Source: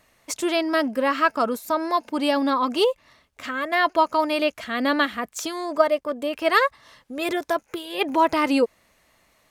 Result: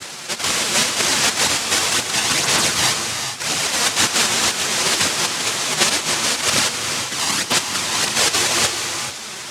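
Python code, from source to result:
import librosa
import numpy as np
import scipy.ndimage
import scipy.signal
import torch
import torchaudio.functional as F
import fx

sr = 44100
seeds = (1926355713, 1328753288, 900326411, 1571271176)

y = fx.bin_compress(x, sr, power=0.4)
y = fx.noise_vocoder(y, sr, seeds[0], bands=1)
y = fx.chorus_voices(y, sr, voices=2, hz=0.99, base_ms=11, depth_ms=3.0, mix_pct=70)
y = fx.rev_gated(y, sr, seeds[1], gate_ms=460, shape='rising', drr_db=5.0)
y = F.gain(torch.from_numpy(y), -1.0).numpy()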